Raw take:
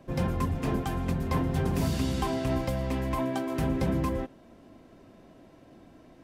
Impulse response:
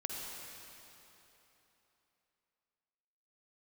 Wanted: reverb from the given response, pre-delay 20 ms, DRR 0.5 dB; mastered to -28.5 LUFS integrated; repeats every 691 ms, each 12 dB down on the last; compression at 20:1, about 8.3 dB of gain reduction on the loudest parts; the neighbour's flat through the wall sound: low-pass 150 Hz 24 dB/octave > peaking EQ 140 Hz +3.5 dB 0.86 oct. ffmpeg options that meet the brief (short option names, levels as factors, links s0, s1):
-filter_complex "[0:a]acompressor=threshold=0.0282:ratio=20,aecho=1:1:691|1382|2073:0.251|0.0628|0.0157,asplit=2[s0][s1];[1:a]atrim=start_sample=2205,adelay=20[s2];[s1][s2]afir=irnorm=-1:irlink=0,volume=0.794[s3];[s0][s3]amix=inputs=2:normalize=0,lowpass=f=150:w=0.5412,lowpass=f=150:w=1.3066,equalizer=f=140:t=o:w=0.86:g=3.5,volume=2.82"